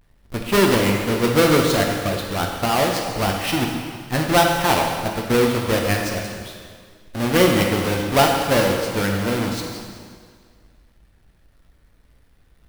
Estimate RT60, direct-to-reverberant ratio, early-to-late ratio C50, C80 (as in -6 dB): 1.9 s, 0.5 dB, 2.5 dB, 4.0 dB